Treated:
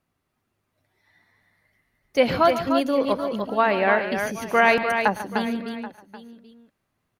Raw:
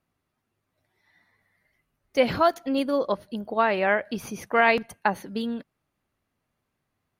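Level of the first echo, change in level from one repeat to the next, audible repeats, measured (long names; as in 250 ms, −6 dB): −19.0 dB, repeats not evenly spaced, 6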